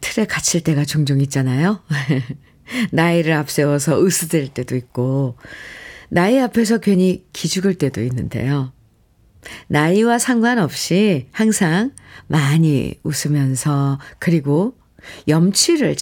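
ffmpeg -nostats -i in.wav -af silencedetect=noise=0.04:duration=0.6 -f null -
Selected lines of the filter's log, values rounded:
silence_start: 8.68
silence_end: 9.45 | silence_duration: 0.77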